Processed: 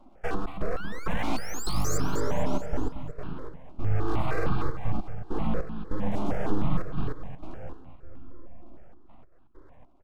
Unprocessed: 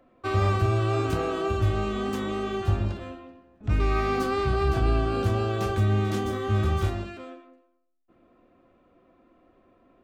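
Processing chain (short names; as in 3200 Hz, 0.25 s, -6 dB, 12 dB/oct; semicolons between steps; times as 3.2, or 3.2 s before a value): tilt -3 dB/oct; compressor 5:1, threshold -25 dBFS, peak gain reduction 16 dB; digital reverb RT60 2.5 s, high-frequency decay 0.75×, pre-delay 0.11 s, DRR 5 dB; step gate "xxx.x..xx..xxx" 99 bpm -60 dB; painted sound rise, 0.62–1.98, 490–7600 Hz -36 dBFS; full-wave rectifier; feedback echo 0.228 s, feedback 49%, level -10 dB; step phaser 6.5 Hz 470–2000 Hz; gain +4 dB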